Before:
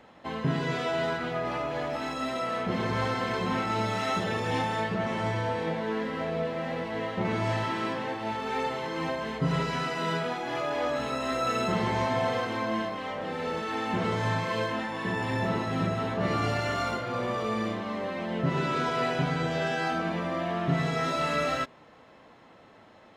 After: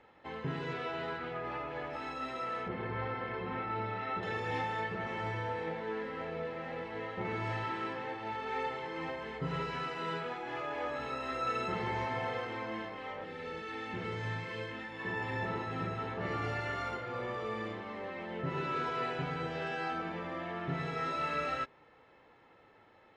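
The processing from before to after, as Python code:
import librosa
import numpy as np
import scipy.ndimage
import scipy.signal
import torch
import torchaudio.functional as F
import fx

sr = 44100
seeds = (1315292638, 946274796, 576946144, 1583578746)

y = fx.peak_eq(x, sr, hz=7200.0, db=-5.5, octaves=0.78, at=(0.73, 1.93))
y = fx.air_absorb(y, sr, metres=300.0, at=(2.68, 4.23))
y = fx.peak_eq(y, sr, hz=870.0, db=-7.5, octaves=1.7, at=(13.24, 15.0))
y = fx.lowpass(y, sr, hz=2900.0, slope=6)
y = fx.peak_eq(y, sr, hz=2100.0, db=4.5, octaves=1.2)
y = y + 0.41 * np.pad(y, (int(2.3 * sr / 1000.0), 0))[:len(y)]
y = y * 10.0 ** (-8.5 / 20.0)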